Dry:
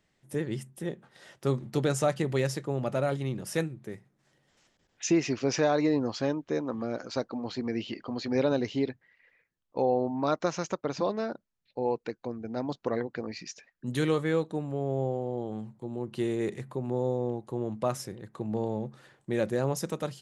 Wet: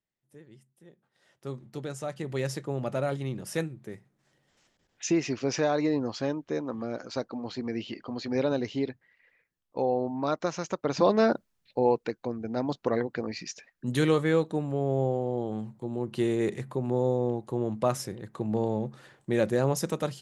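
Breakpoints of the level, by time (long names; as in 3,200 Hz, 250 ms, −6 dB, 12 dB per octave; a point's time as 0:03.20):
0:00.91 −20 dB
0:01.49 −9.5 dB
0:02.03 −9.5 dB
0:02.52 −1 dB
0:10.66 −1 dB
0:11.28 +11 dB
0:12.14 +3 dB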